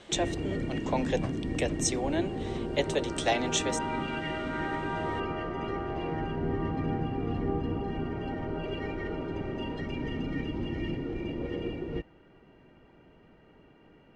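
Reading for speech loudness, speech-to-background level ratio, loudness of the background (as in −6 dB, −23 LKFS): −32.0 LKFS, 1.5 dB, −33.5 LKFS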